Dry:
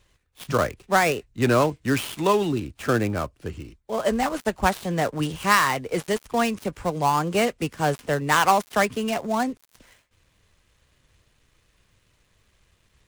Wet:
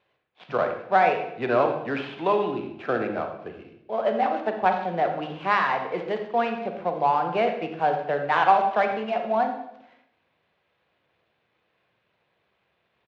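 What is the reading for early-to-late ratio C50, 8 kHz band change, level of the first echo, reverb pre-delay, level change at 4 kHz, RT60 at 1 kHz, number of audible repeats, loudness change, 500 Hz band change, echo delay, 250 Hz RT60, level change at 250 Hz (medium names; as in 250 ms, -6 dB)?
6.5 dB, under -25 dB, -14.0 dB, 35 ms, -8.5 dB, 0.70 s, 1, -1.0 dB, 0.0 dB, 84 ms, 0.95 s, -6.5 dB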